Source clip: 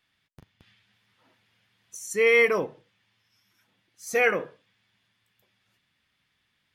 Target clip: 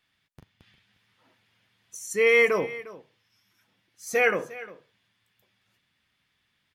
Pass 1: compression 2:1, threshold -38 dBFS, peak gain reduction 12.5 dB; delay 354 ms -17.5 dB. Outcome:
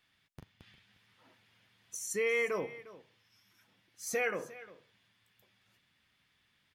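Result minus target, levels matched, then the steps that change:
compression: peak gain reduction +12.5 dB
remove: compression 2:1, threshold -38 dBFS, peak gain reduction 12.5 dB

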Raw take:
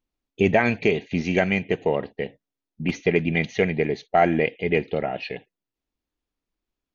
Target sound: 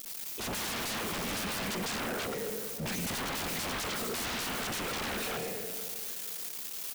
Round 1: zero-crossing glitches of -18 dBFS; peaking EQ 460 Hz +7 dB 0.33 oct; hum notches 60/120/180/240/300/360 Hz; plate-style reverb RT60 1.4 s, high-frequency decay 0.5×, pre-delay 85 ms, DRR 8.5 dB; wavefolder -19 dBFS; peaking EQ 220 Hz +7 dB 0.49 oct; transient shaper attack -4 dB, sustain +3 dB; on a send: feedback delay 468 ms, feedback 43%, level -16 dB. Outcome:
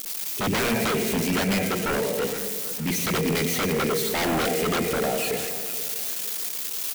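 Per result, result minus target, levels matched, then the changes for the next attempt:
wavefolder: distortion -16 dB; zero-crossing glitches: distortion +9 dB
change: wavefolder -30.5 dBFS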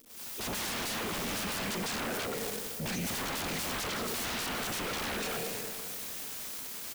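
zero-crossing glitches: distortion +9 dB
change: zero-crossing glitches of -27 dBFS

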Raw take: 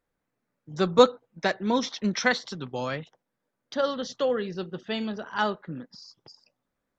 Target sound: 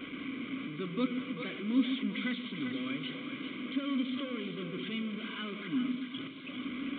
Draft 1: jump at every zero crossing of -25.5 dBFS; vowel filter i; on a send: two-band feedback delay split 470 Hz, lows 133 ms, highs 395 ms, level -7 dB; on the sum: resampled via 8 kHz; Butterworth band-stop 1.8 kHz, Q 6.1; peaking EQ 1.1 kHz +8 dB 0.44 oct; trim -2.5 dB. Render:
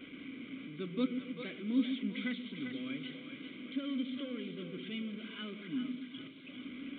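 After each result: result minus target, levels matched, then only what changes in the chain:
1 kHz band -5.5 dB; jump at every zero crossing: distortion -4 dB
change: peaking EQ 1.1 kHz +18 dB 0.44 oct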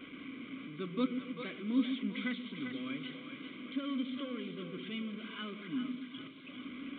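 jump at every zero crossing: distortion -4 dB
change: jump at every zero crossing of -19 dBFS

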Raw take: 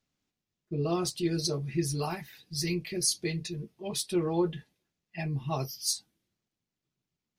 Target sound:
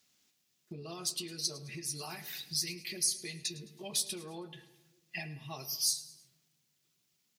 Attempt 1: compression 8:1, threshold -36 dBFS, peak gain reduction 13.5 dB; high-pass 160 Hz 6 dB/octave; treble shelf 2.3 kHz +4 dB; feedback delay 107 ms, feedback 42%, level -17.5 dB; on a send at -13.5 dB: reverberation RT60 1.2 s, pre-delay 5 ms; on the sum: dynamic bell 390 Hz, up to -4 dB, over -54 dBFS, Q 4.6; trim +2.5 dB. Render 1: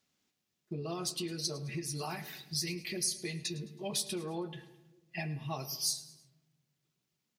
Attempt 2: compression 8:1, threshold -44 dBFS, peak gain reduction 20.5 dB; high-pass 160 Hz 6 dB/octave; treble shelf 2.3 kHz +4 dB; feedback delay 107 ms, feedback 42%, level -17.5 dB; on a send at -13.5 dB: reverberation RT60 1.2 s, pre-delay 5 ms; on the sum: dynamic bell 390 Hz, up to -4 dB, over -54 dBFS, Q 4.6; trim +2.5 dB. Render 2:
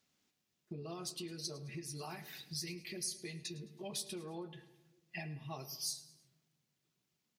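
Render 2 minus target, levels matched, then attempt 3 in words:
2 kHz band +3.0 dB
compression 8:1, threshold -44 dBFS, peak gain reduction 20.5 dB; high-pass 160 Hz 6 dB/octave; treble shelf 2.3 kHz +14.5 dB; feedback delay 107 ms, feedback 42%, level -17.5 dB; on a send at -13.5 dB: reverberation RT60 1.2 s, pre-delay 5 ms; on the sum: dynamic bell 390 Hz, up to -4 dB, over -54 dBFS, Q 4.6; trim +2.5 dB

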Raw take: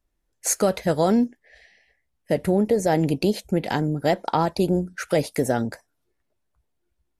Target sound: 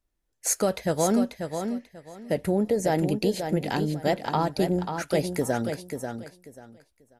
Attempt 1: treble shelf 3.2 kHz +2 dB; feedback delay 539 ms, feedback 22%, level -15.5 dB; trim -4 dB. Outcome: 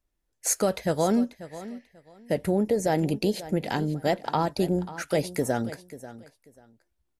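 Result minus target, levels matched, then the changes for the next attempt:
echo-to-direct -8.5 dB
change: feedback delay 539 ms, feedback 22%, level -7 dB

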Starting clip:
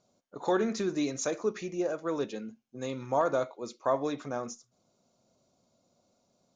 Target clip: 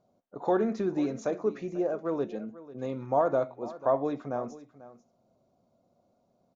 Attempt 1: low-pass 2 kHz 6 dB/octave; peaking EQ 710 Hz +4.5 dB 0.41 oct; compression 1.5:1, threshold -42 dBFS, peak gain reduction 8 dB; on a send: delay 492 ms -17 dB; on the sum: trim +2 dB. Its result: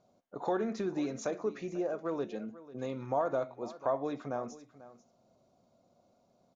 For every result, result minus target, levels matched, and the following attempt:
compression: peak gain reduction +8 dB; 2 kHz band +3.5 dB
low-pass 2 kHz 6 dB/octave; peaking EQ 710 Hz +4.5 dB 0.41 oct; on a send: delay 492 ms -17 dB; on the sum: trim +2 dB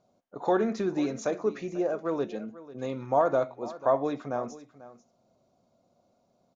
2 kHz band +3.0 dB
low-pass 900 Hz 6 dB/octave; peaking EQ 710 Hz +4.5 dB 0.41 oct; on a send: delay 492 ms -17 dB; on the sum: trim +2 dB

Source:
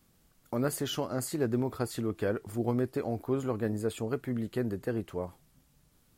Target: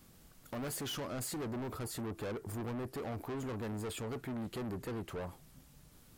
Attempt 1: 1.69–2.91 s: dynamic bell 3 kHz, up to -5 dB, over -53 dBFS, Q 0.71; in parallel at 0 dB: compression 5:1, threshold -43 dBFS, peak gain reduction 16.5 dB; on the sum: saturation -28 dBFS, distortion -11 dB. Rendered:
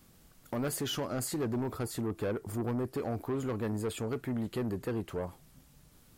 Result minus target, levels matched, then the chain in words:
saturation: distortion -6 dB
1.69–2.91 s: dynamic bell 3 kHz, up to -5 dB, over -53 dBFS, Q 0.71; in parallel at 0 dB: compression 5:1, threshold -43 dBFS, peak gain reduction 16.5 dB; on the sum: saturation -37 dBFS, distortion -5 dB

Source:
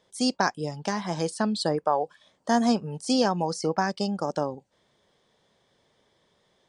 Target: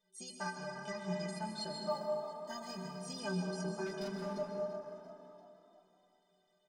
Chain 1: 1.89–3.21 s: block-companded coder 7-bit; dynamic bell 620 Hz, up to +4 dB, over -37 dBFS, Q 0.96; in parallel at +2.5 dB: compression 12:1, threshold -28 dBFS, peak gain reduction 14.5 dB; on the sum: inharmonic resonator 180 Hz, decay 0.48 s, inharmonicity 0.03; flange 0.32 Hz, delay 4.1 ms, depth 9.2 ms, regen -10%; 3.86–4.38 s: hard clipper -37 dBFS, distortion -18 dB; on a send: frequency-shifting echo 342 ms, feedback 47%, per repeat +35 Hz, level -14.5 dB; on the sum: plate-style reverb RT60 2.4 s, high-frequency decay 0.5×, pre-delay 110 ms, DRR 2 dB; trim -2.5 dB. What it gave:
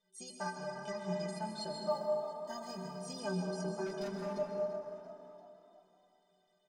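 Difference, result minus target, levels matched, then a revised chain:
2 kHz band -3.0 dB
1.89–3.21 s: block-companded coder 7-bit; dynamic bell 2.4 kHz, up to +4 dB, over -37 dBFS, Q 0.96; in parallel at +2.5 dB: compression 12:1, threshold -28 dBFS, peak gain reduction 12.5 dB; on the sum: inharmonic resonator 180 Hz, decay 0.48 s, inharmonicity 0.03; flange 0.32 Hz, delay 4.1 ms, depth 9.2 ms, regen -10%; 3.86–4.38 s: hard clipper -37 dBFS, distortion -20 dB; on a send: frequency-shifting echo 342 ms, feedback 47%, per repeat +35 Hz, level -14.5 dB; on the sum: plate-style reverb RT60 2.4 s, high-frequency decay 0.5×, pre-delay 110 ms, DRR 2 dB; trim -2.5 dB

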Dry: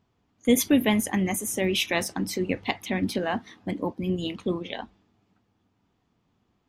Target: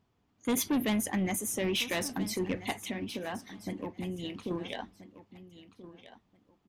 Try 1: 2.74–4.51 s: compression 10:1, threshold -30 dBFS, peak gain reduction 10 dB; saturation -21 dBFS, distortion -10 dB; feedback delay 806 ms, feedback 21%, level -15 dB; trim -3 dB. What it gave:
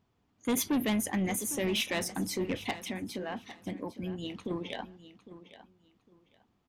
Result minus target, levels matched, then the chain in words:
echo 525 ms early
2.74–4.51 s: compression 10:1, threshold -30 dBFS, peak gain reduction 10 dB; saturation -21 dBFS, distortion -10 dB; feedback delay 1331 ms, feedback 21%, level -15 dB; trim -3 dB

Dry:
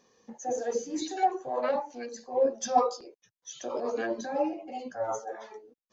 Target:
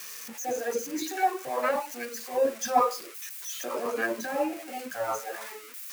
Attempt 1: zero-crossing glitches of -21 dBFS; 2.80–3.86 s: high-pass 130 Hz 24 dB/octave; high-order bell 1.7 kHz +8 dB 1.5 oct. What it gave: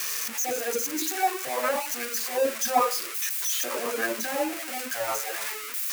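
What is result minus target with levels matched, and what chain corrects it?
zero-crossing glitches: distortion +11 dB
zero-crossing glitches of -32 dBFS; 2.80–3.86 s: high-pass 130 Hz 24 dB/octave; high-order bell 1.7 kHz +8 dB 1.5 oct

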